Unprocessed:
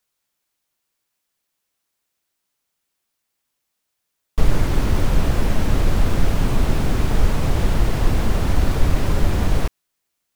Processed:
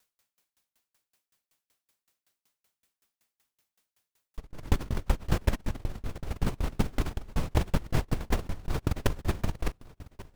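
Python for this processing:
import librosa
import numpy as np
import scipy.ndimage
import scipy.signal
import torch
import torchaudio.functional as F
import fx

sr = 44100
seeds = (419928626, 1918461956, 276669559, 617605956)

y = fx.doubler(x, sr, ms=41.0, db=-12.0)
y = fx.over_compress(y, sr, threshold_db=-20.0, ratio=-0.5)
y = fx.echo_feedback(y, sr, ms=1150, feedback_pct=40, wet_db=-19.0)
y = fx.tremolo_decay(y, sr, direction='decaying', hz=5.3, depth_db=34)
y = F.gain(torch.from_numpy(y), 2.0).numpy()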